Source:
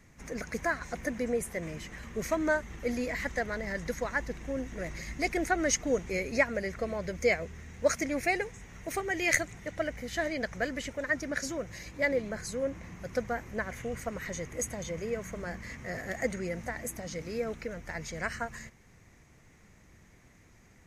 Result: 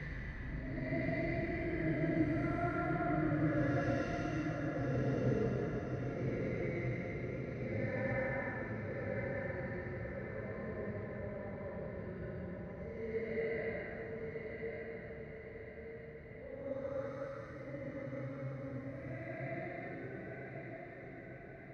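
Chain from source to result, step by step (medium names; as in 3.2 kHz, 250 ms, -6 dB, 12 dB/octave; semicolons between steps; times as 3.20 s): octave divider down 1 oct, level 0 dB; Doppler pass-by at 4.19 s, 10 m/s, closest 2.7 m; high-pass 63 Hz; peaking EQ 130 Hz +6.5 dB 0.29 oct; in parallel at 0 dB: compressor with a negative ratio -41 dBFS; on the sum: Paulstretch 5.6×, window 0.25 s, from 4.94 s; distance through air 430 m; echo that smears into a reverb 1060 ms, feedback 57%, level -5 dB; speed mistake 25 fps video run at 24 fps; trim +1 dB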